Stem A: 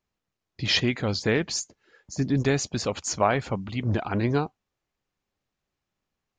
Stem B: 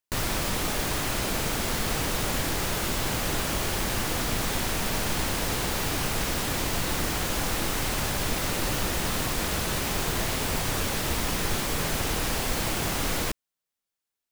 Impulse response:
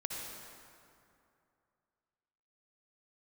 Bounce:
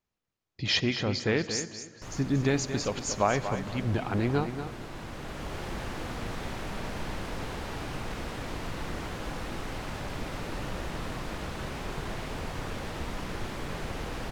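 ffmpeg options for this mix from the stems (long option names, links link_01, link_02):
-filter_complex "[0:a]volume=-4.5dB,asplit=4[link_01][link_02][link_03][link_04];[link_02]volume=-14.5dB[link_05];[link_03]volume=-8.5dB[link_06];[1:a]aemphasis=mode=reproduction:type=75fm,adelay=1900,volume=-10.5dB,asplit=2[link_07][link_08];[link_08]volume=-5.5dB[link_09];[link_04]apad=whole_len=715243[link_10];[link_07][link_10]sidechaincompress=threshold=-46dB:ratio=8:attack=7.7:release=761[link_11];[2:a]atrim=start_sample=2205[link_12];[link_05][link_09]amix=inputs=2:normalize=0[link_13];[link_13][link_12]afir=irnorm=-1:irlink=0[link_14];[link_06]aecho=0:1:233|466|699|932:1|0.25|0.0625|0.0156[link_15];[link_01][link_11][link_14][link_15]amix=inputs=4:normalize=0"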